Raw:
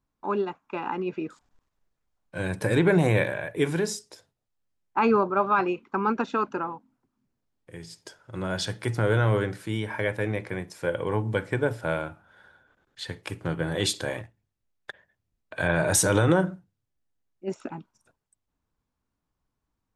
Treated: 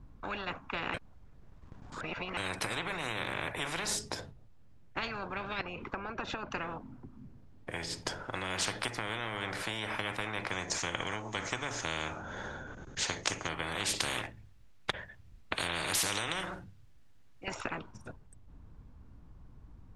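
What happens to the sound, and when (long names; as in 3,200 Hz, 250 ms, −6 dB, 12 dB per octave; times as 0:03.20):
0:00.94–0:02.37: reverse
0:05.61–0:06.51: downward compressor, threshold −39 dBFS
0:10.50–0:13.49: low-pass with resonance 6,500 Hz, resonance Q 14
0:14.00–0:17.48: tilt shelving filter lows −7 dB
whole clip: RIAA equalisation playback; downward compressor 6 to 1, threshold −21 dBFS; every bin compressed towards the loudest bin 10 to 1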